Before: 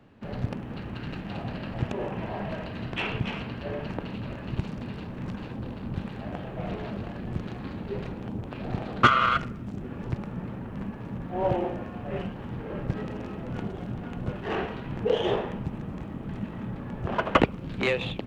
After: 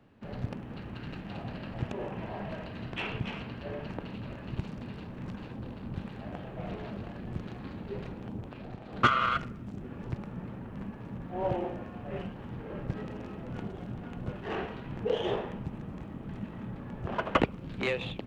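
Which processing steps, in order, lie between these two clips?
8.46–8.93 compressor 3:1, threshold -36 dBFS, peak gain reduction 10 dB; gain -5 dB

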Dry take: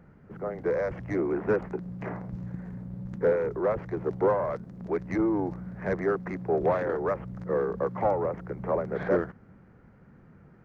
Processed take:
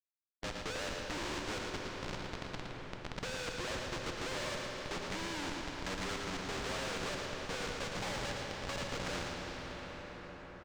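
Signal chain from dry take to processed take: per-bin expansion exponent 2; comb 3.6 ms, depth 70%; in parallel at -1.5 dB: compressor, threshold -36 dBFS, peak gain reduction 16 dB; on the sum: Schmitt trigger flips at -36 dBFS; air absorption 150 m; echo 0.113 s -7 dB; plate-style reverb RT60 4.5 s, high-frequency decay 0.75×, DRR 3.5 dB; spectral compressor 2:1; gain -6 dB

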